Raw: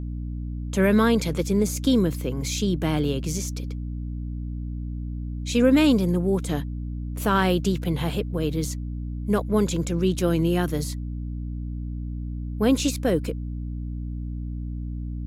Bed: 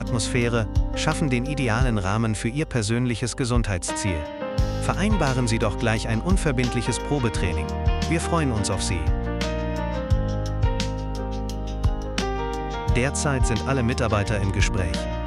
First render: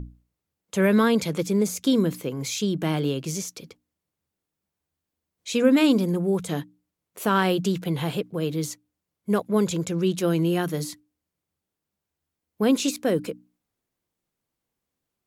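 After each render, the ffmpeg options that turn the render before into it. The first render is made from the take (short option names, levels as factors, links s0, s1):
-af "bandreject=f=60:t=h:w=6,bandreject=f=120:t=h:w=6,bandreject=f=180:t=h:w=6,bandreject=f=240:t=h:w=6,bandreject=f=300:t=h:w=6"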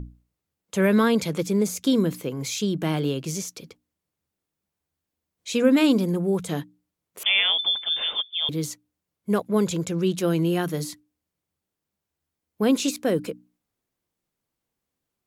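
-filter_complex "[0:a]asettb=1/sr,asplit=3[s0][s1][s2];[s0]atrim=end=7.234[s3];[s1]atrim=start=7.23:end=8.49,asetpts=PTS-STARTPTS,afade=t=in:d=0.004:c=qsin,afade=t=out:st=1.256:d=0.004:c=qsin,lowpass=f=3100:t=q:w=0.5098,lowpass=f=3100:t=q:w=0.6013,lowpass=f=3100:t=q:w=0.9,lowpass=f=3100:t=q:w=2.563,afreqshift=-3700[s4];[s2]atrim=start=8.486[s5];[s3][s4]acrossfade=d=0.004:c1=hsin:c2=qsin[s6];[s6][s5]acrossfade=d=0.004:c1=qsin:c2=hsin"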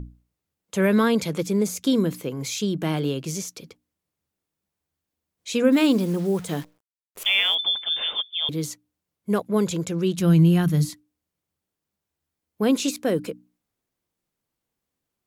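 -filter_complex "[0:a]asettb=1/sr,asplit=3[s0][s1][s2];[s0]atrim=end=5.724[s3];[s1]atrim=start=5.72:end=7.55,asetpts=PTS-STARTPTS,afade=t=in:d=0.004:c=qsin,afade=t=out:st=1.826:d=0.004:c=qsin,acrusher=bits=8:dc=4:mix=0:aa=0.000001[s4];[s2]atrim=start=7.546[s5];[s3][s4]acrossfade=d=0.004:c1=hsin:c2=qsin[s6];[s6][s5]acrossfade=d=0.004:c1=qsin:c2=hsin,asplit=3[s7][s8][s9];[s7]afade=t=out:st=10.17:d=0.02[s10];[s8]asubboost=boost=8:cutoff=150,afade=t=in:st=10.17:d=0.02,afade=t=out:st=10.89:d=0.02[s11];[s9]afade=t=in:st=10.89:d=0.02[s12];[s10][s11][s12]amix=inputs=3:normalize=0"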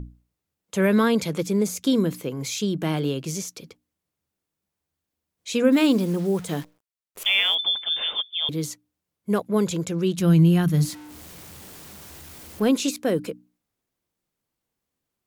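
-filter_complex "[0:a]asettb=1/sr,asplit=3[s0][s1][s2];[s0]atrim=end=10.744[s3];[s1]atrim=start=10.74:end=12.69,asetpts=PTS-STARTPTS,afade=t=in:d=0.004:c=qsin,afade=t=out:st=1.946:d=0.004:c=qsin,aeval=exprs='val(0)+0.5*0.015*sgn(val(0))':c=same[s4];[s2]atrim=start=12.686[s5];[s3][s4]acrossfade=d=0.004:c1=hsin:c2=qsin[s6];[s6][s5]acrossfade=d=0.004:c1=qsin:c2=hsin"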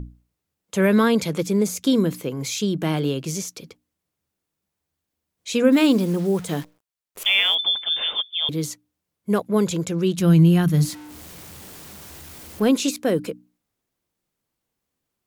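-af "volume=1.26"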